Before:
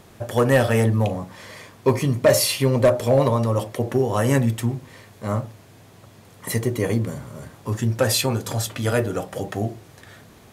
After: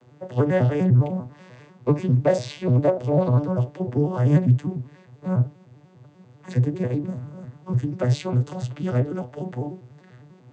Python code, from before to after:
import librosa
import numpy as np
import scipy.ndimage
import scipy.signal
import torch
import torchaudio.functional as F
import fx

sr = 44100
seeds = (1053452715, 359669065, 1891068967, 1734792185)

y = fx.vocoder_arp(x, sr, chord='minor triad', root=47, every_ms=99)